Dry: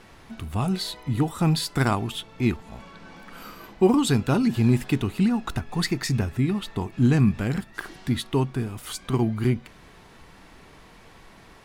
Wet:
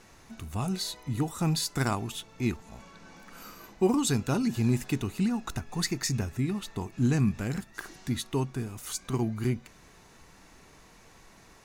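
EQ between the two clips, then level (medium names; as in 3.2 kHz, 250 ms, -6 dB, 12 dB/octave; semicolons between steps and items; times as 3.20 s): peaking EQ 6.4 kHz +8.5 dB 0.46 oct; treble shelf 8.4 kHz +7 dB; band-stop 3.2 kHz, Q 13; -6.0 dB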